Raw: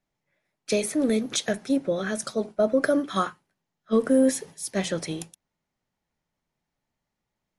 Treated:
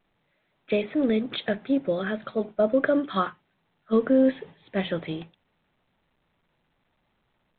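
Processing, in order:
low-pass that shuts in the quiet parts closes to 2,300 Hz
A-law companding 64 kbit/s 8,000 Hz

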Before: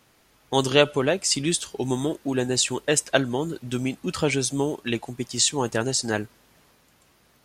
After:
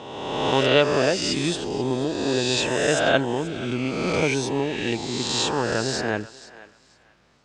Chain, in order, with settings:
peak hold with a rise ahead of every peak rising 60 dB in 1.58 s
high-frequency loss of the air 130 metres
feedback echo with a high-pass in the loop 483 ms, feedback 22%, high-pass 640 Hz, level −16.5 dB
level −1.5 dB

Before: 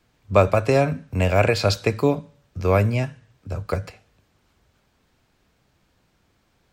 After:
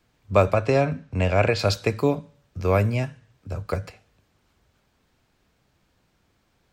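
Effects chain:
0:00.54–0:01.59: low-pass filter 6,200 Hz 12 dB per octave
level −2 dB

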